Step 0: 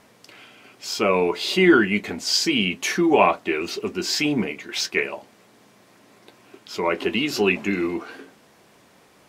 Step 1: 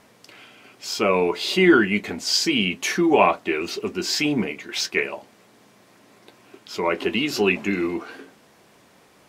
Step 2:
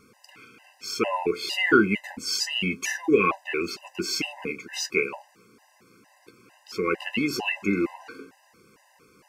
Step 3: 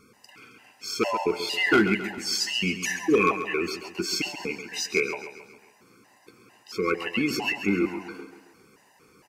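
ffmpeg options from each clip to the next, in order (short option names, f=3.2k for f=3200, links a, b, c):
-af anull
-af "superequalizer=8b=0.398:13b=0.398,afftfilt=real='re*gt(sin(2*PI*2.2*pts/sr)*(1-2*mod(floor(b*sr/1024/520),2)),0)':imag='im*gt(sin(2*PI*2.2*pts/sr)*(1-2*mod(floor(b*sr/1024/520),2)),0)':win_size=1024:overlap=0.75"
-af "asoftclip=type=hard:threshold=-13.5dB,aecho=1:1:135|270|405|540|675:0.282|0.138|0.0677|0.0332|0.0162"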